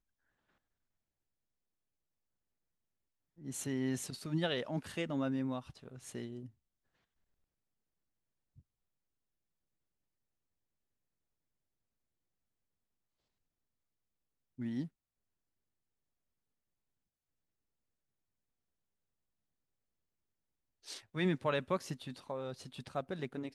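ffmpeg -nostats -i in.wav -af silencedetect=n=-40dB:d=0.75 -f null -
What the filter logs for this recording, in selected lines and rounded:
silence_start: 0.00
silence_end: 3.46 | silence_duration: 3.46
silence_start: 6.46
silence_end: 14.59 | silence_duration: 8.13
silence_start: 14.86
silence_end: 20.88 | silence_duration: 6.02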